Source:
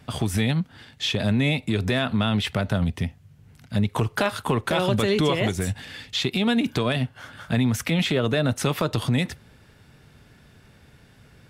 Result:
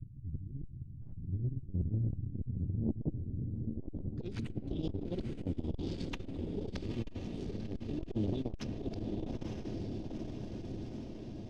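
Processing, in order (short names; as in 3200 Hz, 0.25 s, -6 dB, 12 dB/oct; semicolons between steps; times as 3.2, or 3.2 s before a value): elliptic band-stop 200–5900 Hz, stop band 50 dB; treble ducked by the level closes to 700 Hz, closed at -20.5 dBFS; auto swell 0.715 s; reverse; compressor 6:1, threshold -41 dBFS, peak gain reduction 16.5 dB; reverse; formant-preserving pitch shift -2.5 st; hum 60 Hz, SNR 19 dB; added harmonics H 3 -6 dB, 6 -7 dB, 8 -25 dB, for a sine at -31 dBFS; low-pass sweep 120 Hz -> 2900 Hz, 2.47–4.46; diffused feedback echo 0.909 s, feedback 67%, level -5 dB; on a send at -15 dB: reverb RT60 3.0 s, pre-delay 3 ms; on the sum: core saturation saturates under 220 Hz; gain +11 dB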